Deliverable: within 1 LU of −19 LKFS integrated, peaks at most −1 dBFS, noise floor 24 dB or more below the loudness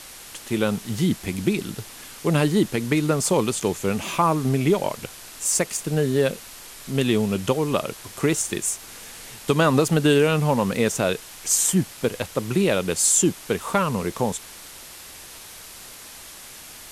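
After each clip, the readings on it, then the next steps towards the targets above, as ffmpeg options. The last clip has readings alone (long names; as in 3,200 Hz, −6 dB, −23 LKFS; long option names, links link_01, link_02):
background noise floor −42 dBFS; target noise floor −47 dBFS; integrated loudness −22.5 LKFS; sample peak −6.5 dBFS; target loudness −19.0 LKFS
→ -af "afftdn=noise_reduction=6:noise_floor=-42"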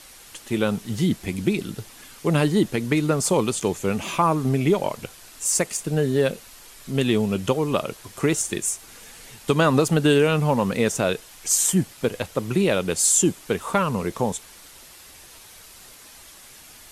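background noise floor −47 dBFS; integrated loudness −22.5 LKFS; sample peak −7.0 dBFS; target loudness −19.0 LKFS
→ -af "volume=3.5dB"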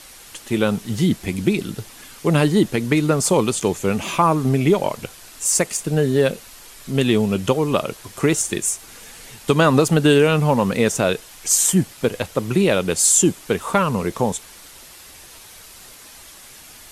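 integrated loudness −19.0 LKFS; sample peak −3.5 dBFS; background noise floor −43 dBFS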